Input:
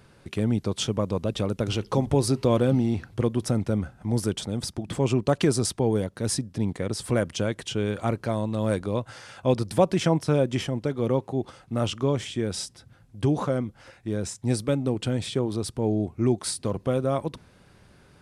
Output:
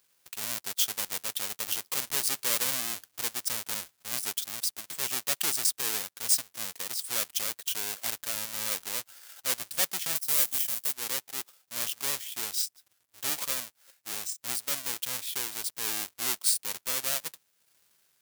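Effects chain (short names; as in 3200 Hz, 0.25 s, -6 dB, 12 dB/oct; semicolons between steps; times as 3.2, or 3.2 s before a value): half-waves squared off; 10.15–10.93 high shelf 7000 Hz +11.5 dB; AGC gain up to 3 dB; sample leveller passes 1; transient shaper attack -2 dB, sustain -6 dB; differentiator; gain -4 dB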